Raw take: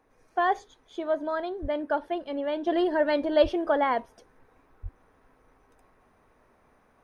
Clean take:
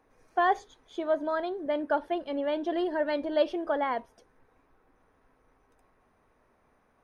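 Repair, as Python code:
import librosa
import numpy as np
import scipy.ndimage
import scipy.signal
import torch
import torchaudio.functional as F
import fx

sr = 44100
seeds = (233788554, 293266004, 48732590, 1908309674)

y = fx.highpass(x, sr, hz=140.0, slope=24, at=(1.61, 1.73), fade=0.02)
y = fx.highpass(y, sr, hz=140.0, slope=24, at=(3.42, 3.54), fade=0.02)
y = fx.highpass(y, sr, hz=140.0, slope=24, at=(4.82, 4.94), fade=0.02)
y = fx.fix_level(y, sr, at_s=2.67, step_db=-4.5)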